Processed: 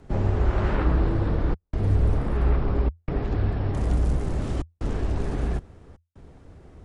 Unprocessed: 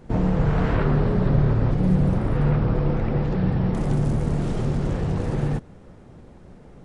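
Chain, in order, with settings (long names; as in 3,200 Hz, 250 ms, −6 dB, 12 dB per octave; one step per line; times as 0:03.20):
gate pattern "xxxxxxxx.xxxxxx." 78 BPM −60 dB
frequency shifter −85 Hz
level −1.5 dB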